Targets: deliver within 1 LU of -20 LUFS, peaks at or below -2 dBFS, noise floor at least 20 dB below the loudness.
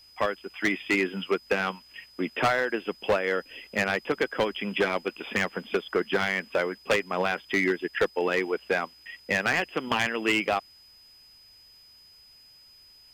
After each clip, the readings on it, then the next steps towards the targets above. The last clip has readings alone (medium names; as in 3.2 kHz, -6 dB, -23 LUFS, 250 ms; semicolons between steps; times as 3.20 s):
clipped samples 1.1%; clipping level -17.5 dBFS; steady tone 5 kHz; tone level -52 dBFS; loudness -27.5 LUFS; peak level -17.5 dBFS; loudness target -20.0 LUFS
-> clip repair -17.5 dBFS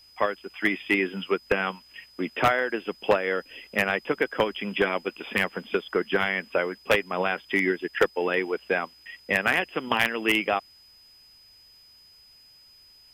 clipped samples 0.0%; steady tone 5 kHz; tone level -52 dBFS
-> band-stop 5 kHz, Q 30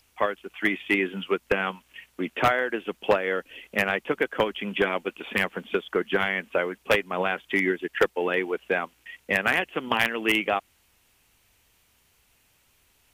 steady tone not found; loudness -26.0 LUFS; peak level -8.5 dBFS; loudness target -20.0 LUFS
-> trim +6 dB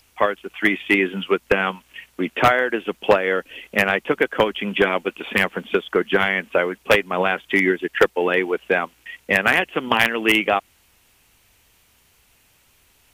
loudness -20.0 LUFS; peak level -2.5 dBFS; noise floor -59 dBFS